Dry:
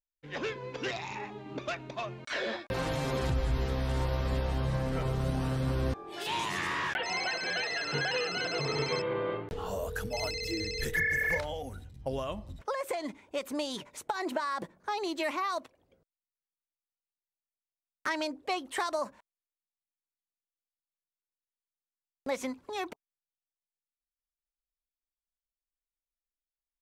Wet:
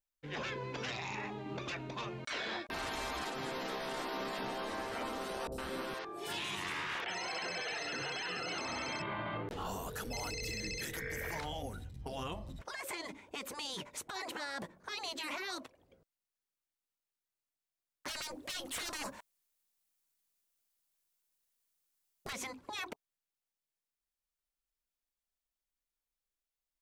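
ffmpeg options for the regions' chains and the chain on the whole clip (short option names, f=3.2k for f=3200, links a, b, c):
-filter_complex "[0:a]asettb=1/sr,asplit=3[a][b][c];[a]atrim=end=5.474[d];[b]atrim=start=5.47:end=8.55,asetpts=PTS-STARTPTS,afade=t=in:d=0.004:c=qsin,afade=t=out:st=3.076:d=0.004:c=qsin,lowshelf=f=420:g=-5,acrossover=split=650|5600[e][f][g];[g]adelay=50[h];[f]adelay=110[i];[e][i][h]amix=inputs=3:normalize=0,atrim=end_sample=135828[j];[c]atrim=start=8.546[k];[d][j]acrossfade=d=0.004:c1=hsin:c2=qsin[l];[l][k]acrossfade=d=0.004:c1=qsin:c2=hsin,asettb=1/sr,asplit=3[m][n][o];[m]atrim=end=18.084[p];[n]atrim=start=18.08:end=22.33,asetpts=PTS-STARTPTS,afade=t=in:d=0.004:c=qsin,afade=t=out:st=4.246:d=0.004:c=qsin,highshelf=f=5.4k:g=9,acontrast=89,aeval=exprs='(tanh(15.8*val(0)+0.4)-tanh(0.4))/15.8':c=same[q];[o]atrim=start=22.326[r];[p][q]acrossfade=d=0.004:c1=hsin:c2=qsin[s];[s][r]acrossfade=d=0.004:c1=qsin:c2=hsin,afftfilt=real='re*lt(hypot(re,im),0.0794)':imag='im*lt(hypot(re,im),0.0794)':win_size=1024:overlap=0.75,alimiter=level_in=8dB:limit=-24dB:level=0:latency=1:release=16,volume=-8dB,volume=1.5dB"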